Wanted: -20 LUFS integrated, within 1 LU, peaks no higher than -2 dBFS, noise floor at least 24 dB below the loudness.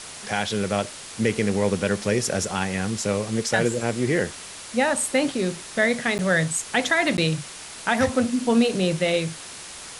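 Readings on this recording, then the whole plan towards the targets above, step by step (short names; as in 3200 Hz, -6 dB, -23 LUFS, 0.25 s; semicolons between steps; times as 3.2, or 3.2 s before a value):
dropouts 2; longest dropout 9.9 ms; noise floor -39 dBFS; noise floor target -48 dBFS; loudness -23.5 LUFS; peak -6.5 dBFS; loudness target -20.0 LUFS
-> interpolate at 6.18/7.17, 9.9 ms; noise print and reduce 9 dB; gain +3.5 dB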